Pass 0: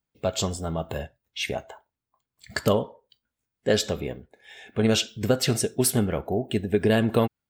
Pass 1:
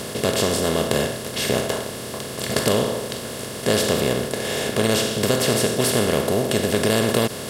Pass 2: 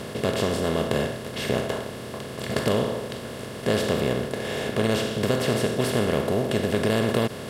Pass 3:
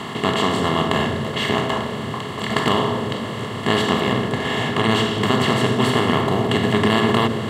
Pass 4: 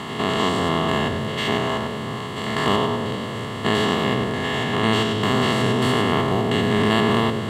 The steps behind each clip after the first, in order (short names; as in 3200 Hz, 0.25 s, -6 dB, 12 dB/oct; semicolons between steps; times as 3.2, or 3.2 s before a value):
per-bin compression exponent 0.2; gain -4.5 dB
tone controls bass +2 dB, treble -9 dB; gain -3.5 dB
reverb RT60 3.5 s, pre-delay 3 ms, DRR 13.5 dB
stepped spectrum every 0.1 s